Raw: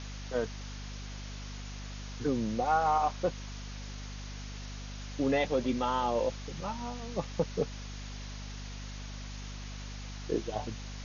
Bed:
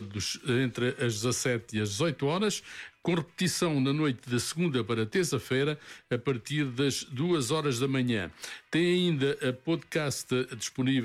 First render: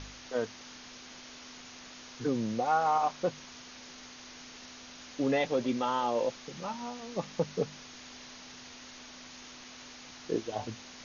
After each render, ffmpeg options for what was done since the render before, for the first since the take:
-af "bandreject=f=50:t=h:w=4,bandreject=f=100:t=h:w=4,bandreject=f=150:t=h:w=4,bandreject=f=200:t=h:w=4"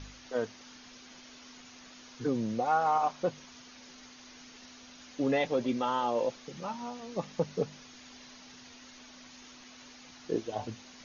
-af "afftdn=nr=6:nf=-49"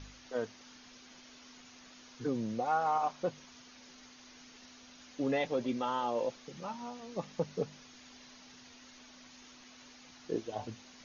-af "volume=-3.5dB"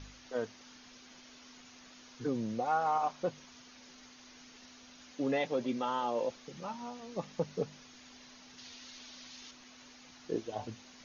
-filter_complex "[0:a]asettb=1/sr,asplit=3[a][b][c];[a]atrim=end=5.124[d];[b]atrim=start=5.12:end=6.31,asetpts=PTS-STARTPTS,afade=t=in:d=0.004:c=qsin,afade=t=out:st=1.186:d=0.004:c=qsin,highpass=110[e];[c]atrim=start=6.306[f];[d][e]acrossfade=d=0.004:c1=hsin:c2=qsin[g];[g][f]acrossfade=d=0.004:c1=qsin:c2=hsin,asettb=1/sr,asplit=3[h][i][j];[h]atrim=end=8.584[k];[i]atrim=start=8.58:end=9.51,asetpts=PTS-STARTPTS,afade=t=in:d=0.004:c=qsin,afade=t=out:st=0.926:d=0.004:c=qsin,equalizer=f=4.1k:t=o:w=1.5:g=8[l];[j]atrim=start=9.506[m];[k][l]acrossfade=d=0.004:c1=hsin:c2=qsin[n];[n][m]acrossfade=d=0.004:c1=qsin:c2=hsin"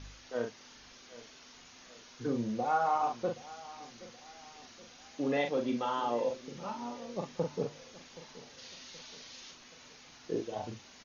-filter_complex "[0:a]asplit=2[a][b];[b]adelay=42,volume=-5dB[c];[a][c]amix=inputs=2:normalize=0,asplit=2[d][e];[e]adelay=774,lowpass=f=2k:p=1,volume=-18dB,asplit=2[f][g];[g]adelay=774,lowpass=f=2k:p=1,volume=0.49,asplit=2[h][i];[i]adelay=774,lowpass=f=2k:p=1,volume=0.49,asplit=2[j][k];[k]adelay=774,lowpass=f=2k:p=1,volume=0.49[l];[d][f][h][j][l]amix=inputs=5:normalize=0"

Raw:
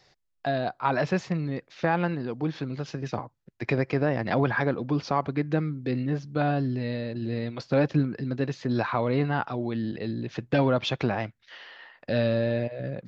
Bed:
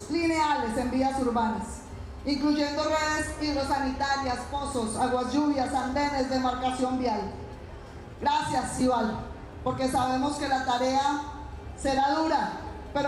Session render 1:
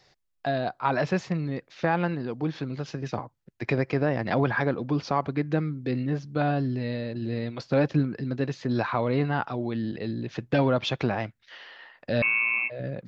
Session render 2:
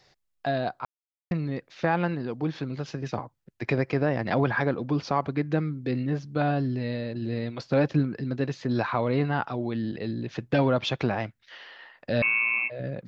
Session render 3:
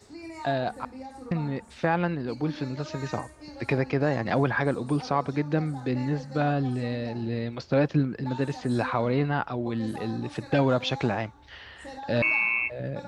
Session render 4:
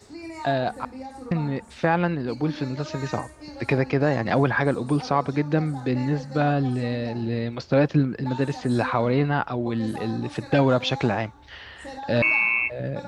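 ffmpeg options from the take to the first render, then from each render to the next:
-filter_complex "[0:a]asettb=1/sr,asplit=3[a][b][c];[a]atrim=end=12.224[d];[b]atrim=start=12.22:end=12.7,asetpts=PTS-STARTPTS,afade=t=in:d=0.004:c=qsin,afade=t=out:st=0.476:d=0.004:c=qsin,lowpass=f=2.4k:t=q:w=0.5098,lowpass=f=2.4k:t=q:w=0.6013,lowpass=f=2.4k:t=q:w=0.9,lowpass=f=2.4k:t=q:w=2.563,afreqshift=-2800[e];[c]atrim=start=12.696[f];[d][e]acrossfade=d=0.004:c1=hsin:c2=qsin[g];[g][f]acrossfade=d=0.004:c1=qsin:c2=hsin"
-filter_complex "[0:a]asplit=3[a][b][c];[a]atrim=end=0.85,asetpts=PTS-STARTPTS,afade=t=out:st=0.846:d=0.004:c=hsin[d];[b]atrim=start=0.85:end=1.31,asetpts=PTS-STARTPTS,volume=0[e];[c]atrim=start=1.31,asetpts=PTS-STARTPTS,afade=t=in:d=0.004:c=hsin[f];[d][e][f]concat=n=3:v=0:a=1"
-filter_complex "[1:a]volume=-15.5dB[a];[0:a][a]amix=inputs=2:normalize=0"
-af "volume=3.5dB"

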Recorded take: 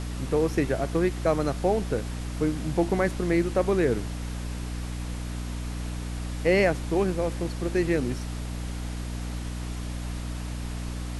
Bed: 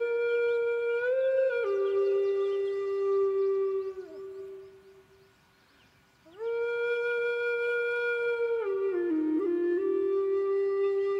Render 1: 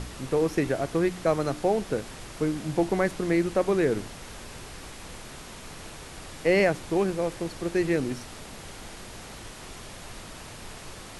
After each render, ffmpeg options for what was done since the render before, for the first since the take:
-af "bandreject=f=60:t=h:w=4,bandreject=f=120:t=h:w=4,bandreject=f=180:t=h:w=4,bandreject=f=240:t=h:w=4,bandreject=f=300:t=h:w=4"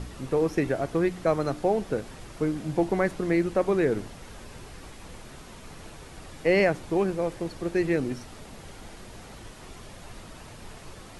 -af "afftdn=nr=6:nf=-43"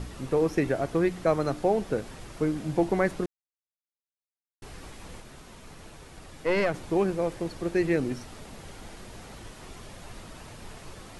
-filter_complex "[0:a]asettb=1/sr,asplit=3[a][b][c];[a]atrim=end=5.204[d];[b]atrim=start=5.2:end=6.74,asetpts=PTS-STARTPTS,afade=t=in:d=0.004:c=qsin,afade=t=out:st=1.536:d=0.004:c=qsin,aeval=exprs='(tanh(5.62*val(0)+0.6)-tanh(0.6))/5.62':c=same[e];[c]atrim=start=6.736[f];[d][e]acrossfade=d=0.004:c1=hsin:c2=qsin[g];[g][f]acrossfade=d=0.004:c1=qsin:c2=hsin,asplit=3[h][i][j];[h]atrim=end=3.26,asetpts=PTS-STARTPTS,afade=t=out:st=3.256:d=0.004:c=hsin[k];[i]atrim=start=3.26:end=4.62,asetpts=PTS-STARTPTS,volume=0[l];[j]atrim=start=4.62,asetpts=PTS-STARTPTS,afade=t=in:d=0.004:c=hsin[m];[k][l][m]concat=n=3:v=0:a=1"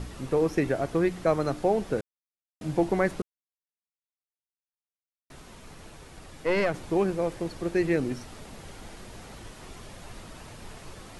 -filter_complex "[0:a]asplit=5[a][b][c][d][e];[a]atrim=end=2.01,asetpts=PTS-STARTPTS,afade=t=out:st=2.006:d=0.004:c=hsin[f];[b]atrim=start=2.01:end=2.61,asetpts=PTS-STARTPTS,volume=0[g];[c]atrim=start=2.61:end=3.22,asetpts=PTS-STARTPTS,afade=t=in:d=0.004:c=hsin,afade=t=out:st=0.606:d=0.004:c=hsin[h];[d]atrim=start=3.22:end=5.3,asetpts=PTS-STARTPTS,volume=0[i];[e]atrim=start=5.3,asetpts=PTS-STARTPTS,afade=t=in:d=0.004:c=hsin[j];[f][g][h][i][j]concat=n=5:v=0:a=1"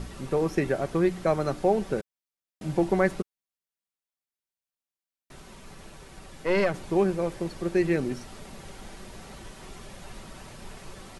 -af "aecho=1:1:5.2:0.31"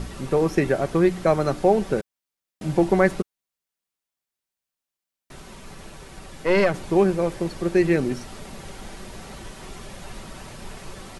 -af "volume=5dB"

